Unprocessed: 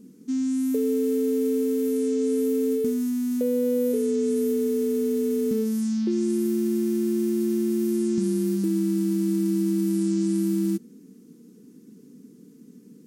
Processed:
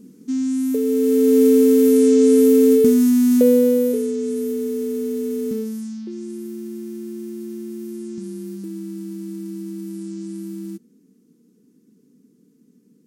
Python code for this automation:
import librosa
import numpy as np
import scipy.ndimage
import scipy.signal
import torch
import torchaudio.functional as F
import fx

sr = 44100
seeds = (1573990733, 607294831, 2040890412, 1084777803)

y = fx.gain(x, sr, db=fx.line((0.84, 3.5), (1.4, 11.0), (3.48, 11.0), (4.15, 0.0), (5.54, 0.0), (6.04, -7.5)))